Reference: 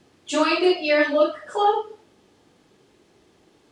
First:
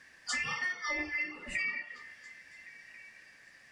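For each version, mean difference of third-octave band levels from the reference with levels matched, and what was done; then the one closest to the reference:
10.5 dB: band-splitting scrambler in four parts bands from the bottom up 2143
downward compressor 12 to 1, threshold −32 dBFS, peak gain reduction 19 dB
on a send: echo through a band-pass that steps 278 ms, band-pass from 350 Hz, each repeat 0.7 octaves, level −7 dB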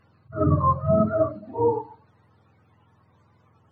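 14.5 dB: frequency axis turned over on the octave scale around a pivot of 620 Hz
high-shelf EQ 5,200 Hz −7 dB
level that may rise only so fast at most 220 dB per second
level −1 dB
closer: first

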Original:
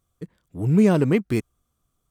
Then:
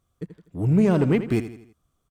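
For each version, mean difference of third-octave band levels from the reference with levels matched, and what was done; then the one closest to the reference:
3.0 dB: one-sided soft clipper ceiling −9 dBFS
high-shelf EQ 6,500 Hz −7 dB
downward compressor 2 to 1, threshold −19 dBFS, peak gain reduction 4 dB
repeating echo 82 ms, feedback 44%, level −12 dB
level +2 dB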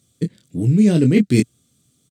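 5.0 dB: high-pass filter 99 Hz
double-tracking delay 24 ms −7.5 dB
reversed playback
downward compressor 10 to 1, threshold −25 dBFS, peak gain reduction 14.5 dB
reversed playback
octave-band graphic EQ 125/250/500/1,000/2,000/4,000/8,000 Hz +10/+10/+4/−12/+5/+11/+12 dB
level +4.5 dB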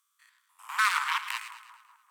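22.0 dB: spectrum averaged block by block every 100 ms
harmonic generator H 7 −8 dB, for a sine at −8.5 dBFS
Butterworth high-pass 1,000 Hz 72 dB per octave
on a send: echo with a time of its own for lows and highs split 1,300 Hz, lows 195 ms, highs 109 ms, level −11.5 dB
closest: first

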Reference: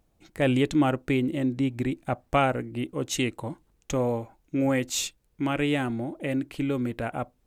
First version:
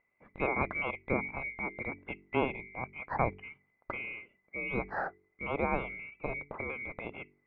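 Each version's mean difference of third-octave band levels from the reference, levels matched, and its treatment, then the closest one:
11.5 dB: neighbouring bands swapped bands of 2,000 Hz
low-pass filter 1,300 Hz 24 dB per octave
hum removal 47.71 Hz, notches 9
level +5 dB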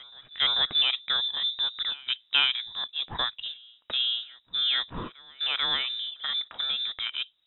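16.0 dB: low-shelf EQ 220 Hz −7.5 dB
on a send: backwards echo 440 ms −23.5 dB
on the sum: voice inversion scrambler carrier 3,800 Hz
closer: first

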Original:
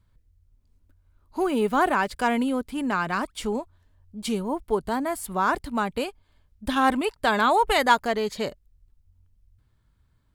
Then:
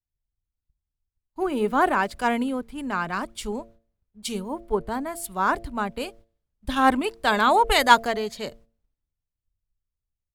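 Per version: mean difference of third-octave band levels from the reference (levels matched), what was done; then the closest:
3.5 dB: background noise brown −52 dBFS
noise gate −45 dBFS, range −15 dB
hum removal 113.8 Hz, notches 6
multiband upward and downward expander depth 70%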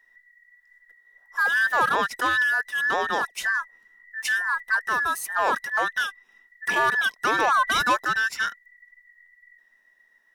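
9.5 dB: frequency inversion band by band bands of 2,000 Hz
low-shelf EQ 190 Hz −10 dB
in parallel at +1 dB: brickwall limiter −15.5 dBFS, peak gain reduction 8.5 dB
on the sum: soft clipping −10 dBFS, distortion −19 dB
level −3.5 dB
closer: first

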